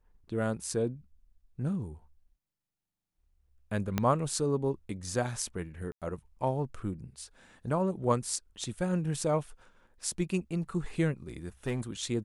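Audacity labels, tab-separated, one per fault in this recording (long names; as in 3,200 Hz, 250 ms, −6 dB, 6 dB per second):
3.980000	3.980000	click −13 dBFS
5.920000	6.020000	drop-out 97 ms
11.660000	11.810000	clipping −27 dBFS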